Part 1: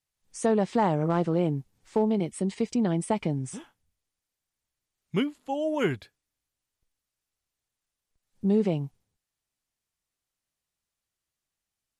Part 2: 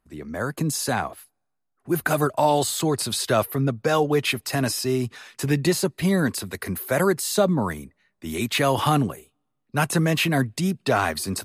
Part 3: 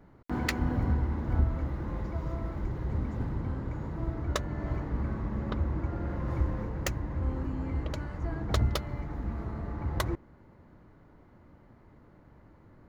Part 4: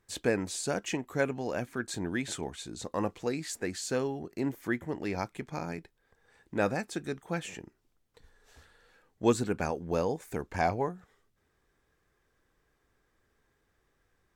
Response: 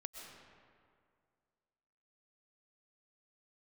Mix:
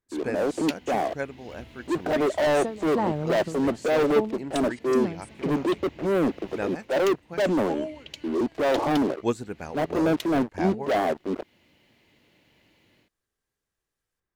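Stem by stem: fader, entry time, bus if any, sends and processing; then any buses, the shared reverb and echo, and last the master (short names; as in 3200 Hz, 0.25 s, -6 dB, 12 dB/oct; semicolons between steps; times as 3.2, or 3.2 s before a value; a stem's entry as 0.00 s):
-2.5 dB, 2.20 s, no send, ending taper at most 110 dB/s
-7.5 dB, 0.00 s, no send, Chebyshev band-pass 300–640 Hz, order 2; sample leveller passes 5; transient shaper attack -4 dB, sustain +1 dB
-10.0 dB, 0.20 s, no send, HPF 330 Hz 6 dB/oct; resonant high shelf 1900 Hz +14 dB, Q 3; AGC gain up to 8 dB; auto duck -7 dB, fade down 1.00 s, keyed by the fourth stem
0.0 dB, 0.00 s, no send, upward expander 1.5:1, over -49 dBFS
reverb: off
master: dry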